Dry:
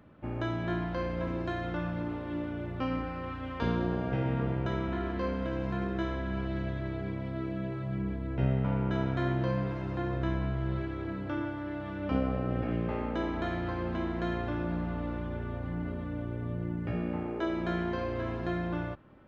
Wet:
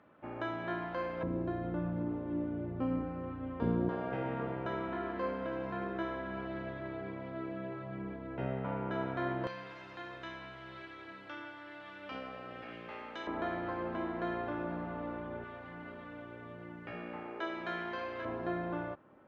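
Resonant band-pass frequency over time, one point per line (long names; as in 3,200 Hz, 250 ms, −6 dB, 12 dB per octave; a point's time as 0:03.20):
resonant band-pass, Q 0.55
1,100 Hz
from 0:01.23 270 Hz
from 0:03.89 930 Hz
from 0:09.47 3,700 Hz
from 0:13.27 850 Hz
from 0:15.44 1,900 Hz
from 0:18.25 730 Hz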